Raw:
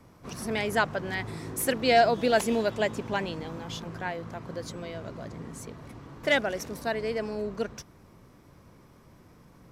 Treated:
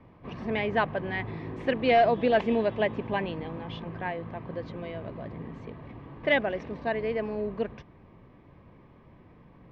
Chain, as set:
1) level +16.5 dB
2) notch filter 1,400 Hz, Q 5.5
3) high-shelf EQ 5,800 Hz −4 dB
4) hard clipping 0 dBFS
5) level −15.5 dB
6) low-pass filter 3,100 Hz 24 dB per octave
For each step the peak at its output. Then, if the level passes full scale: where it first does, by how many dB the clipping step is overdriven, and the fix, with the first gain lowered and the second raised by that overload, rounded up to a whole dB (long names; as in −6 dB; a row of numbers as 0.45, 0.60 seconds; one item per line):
+5.5, +5.5, +5.5, 0.0, −15.5, −14.0 dBFS
step 1, 5.5 dB
step 1 +10.5 dB, step 5 −9.5 dB